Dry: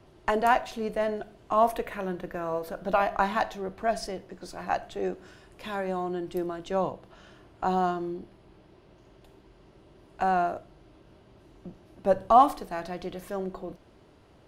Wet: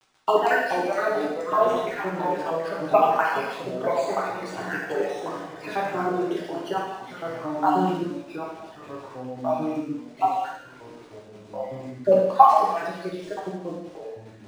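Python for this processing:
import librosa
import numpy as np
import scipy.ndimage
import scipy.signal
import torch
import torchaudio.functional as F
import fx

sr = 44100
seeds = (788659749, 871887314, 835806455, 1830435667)

y = fx.spec_dropout(x, sr, seeds[0], share_pct=66)
y = scipy.signal.sosfilt(scipy.signal.butter(4, 170.0, 'highpass', fs=sr, output='sos'), y)
y = fx.peak_eq(y, sr, hz=230.0, db=-12.5, octaves=0.37)
y = fx.quant_dither(y, sr, seeds[1], bits=10, dither='none')
y = fx.echo_pitch(y, sr, ms=374, semitones=-3, count=3, db_per_echo=-6.0)
y = fx.rev_gated(y, sr, seeds[2], gate_ms=340, shape='falling', drr_db=-4.5)
y = np.interp(np.arange(len(y)), np.arange(len(y))[::3], y[::3])
y = F.gain(torch.from_numpy(y), 4.0).numpy()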